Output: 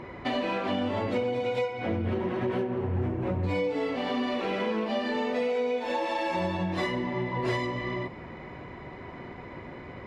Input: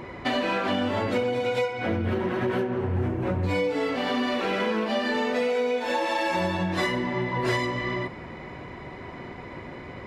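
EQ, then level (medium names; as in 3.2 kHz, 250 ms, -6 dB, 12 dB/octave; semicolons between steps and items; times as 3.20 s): low-pass 3.6 kHz 6 dB/octave; dynamic bell 1.5 kHz, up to -6 dB, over -47 dBFS, Q 3; -2.5 dB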